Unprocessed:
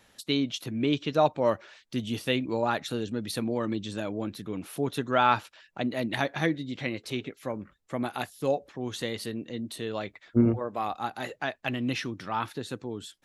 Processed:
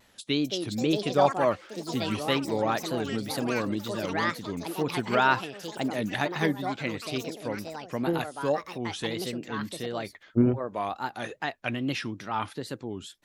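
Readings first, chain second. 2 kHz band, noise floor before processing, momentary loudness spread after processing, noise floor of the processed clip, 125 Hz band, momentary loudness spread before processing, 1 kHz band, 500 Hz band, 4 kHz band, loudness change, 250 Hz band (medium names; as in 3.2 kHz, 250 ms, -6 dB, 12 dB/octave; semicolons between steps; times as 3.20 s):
+2.5 dB, -64 dBFS, 11 LU, -57 dBFS, +0.5 dB, 12 LU, +1.0 dB, +1.0 dB, +1.5 dB, +1.0 dB, +0.5 dB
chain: ever faster or slower copies 304 ms, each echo +5 st, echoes 3, each echo -6 dB; wow and flutter 140 cents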